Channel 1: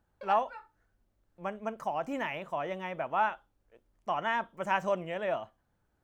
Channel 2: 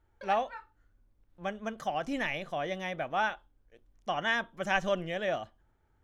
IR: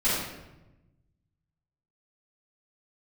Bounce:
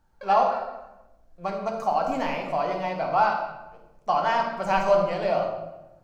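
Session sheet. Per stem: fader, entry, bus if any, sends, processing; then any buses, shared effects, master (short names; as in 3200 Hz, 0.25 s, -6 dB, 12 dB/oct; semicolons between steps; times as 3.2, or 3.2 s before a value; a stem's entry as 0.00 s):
+1.0 dB, 0.00 s, send -12 dB, bell 5800 Hz +5 dB 0.8 oct
-8.0 dB, 0.00 s, send -7.5 dB, median filter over 15 samples; de-esser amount 80%; EQ curve 170 Hz 0 dB, 290 Hz -19 dB, 790 Hz +8 dB, 1400 Hz +8 dB, 2800 Hz -15 dB, 4400 Hz +12 dB, 7500 Hz -18 dB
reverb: on, RT60 1.0 s, pre-delay 3 ms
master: dry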